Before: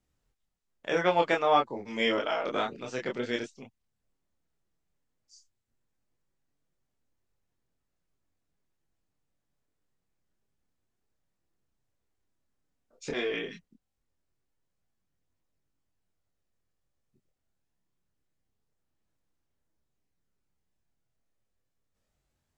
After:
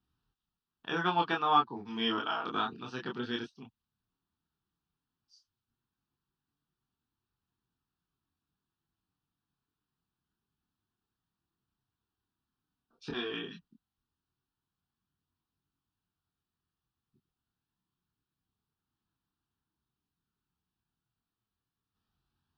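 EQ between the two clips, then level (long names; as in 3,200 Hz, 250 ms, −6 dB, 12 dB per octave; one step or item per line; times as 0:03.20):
high-pass filter 100 Hz 6 dB per octave
high-shelf EQ 7,200 Hz −10.5 dB
phaser with its sweep stopped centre 2,100 Hz, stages 6
+2.0 dB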